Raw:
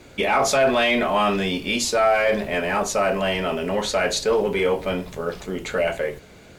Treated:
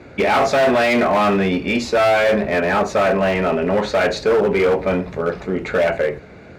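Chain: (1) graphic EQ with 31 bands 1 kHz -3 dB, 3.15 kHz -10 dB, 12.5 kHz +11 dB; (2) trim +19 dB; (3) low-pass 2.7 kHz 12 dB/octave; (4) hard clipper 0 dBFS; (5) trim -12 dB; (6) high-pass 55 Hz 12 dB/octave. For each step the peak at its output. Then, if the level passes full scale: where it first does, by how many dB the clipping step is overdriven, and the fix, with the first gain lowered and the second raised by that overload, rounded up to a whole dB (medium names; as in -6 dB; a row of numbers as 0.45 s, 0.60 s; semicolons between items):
-9.5 dBFS, +9.5 dBFS, +9.5 dBFS, 0.0 dBFS, -12.0 dBFS, -8.5 dBFS; step 2, 9.5 dB; step 2 +9 dB, step 5 -2 dB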